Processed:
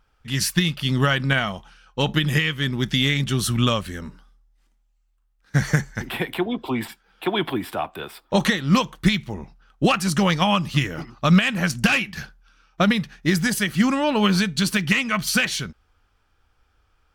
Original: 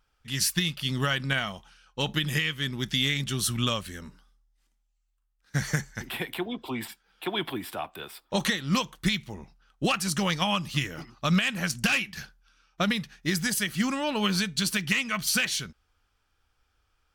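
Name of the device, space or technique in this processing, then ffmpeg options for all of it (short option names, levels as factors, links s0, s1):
behind a face mask: -af "highshelf=f=2600:g=-8,volume=2.66"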